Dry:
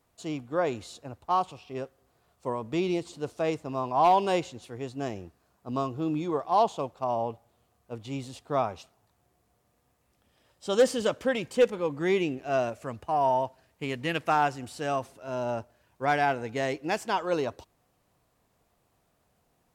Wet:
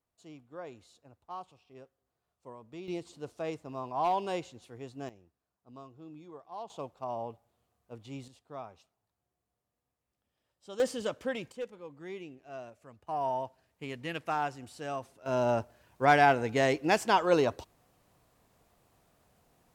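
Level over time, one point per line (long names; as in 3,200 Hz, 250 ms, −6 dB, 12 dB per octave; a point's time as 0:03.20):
−16.5 dB
from 0:02.88 −8 dB
from 0:05.09 −19.5 dB
from 0:06.70 −8 dB
from 0:08.28 −16 dB
from 0:10.80 −7 dB
from 0:11.52 −17 dB
from 0:13.07 −7.5 dB
from 0:15.26 +3 dB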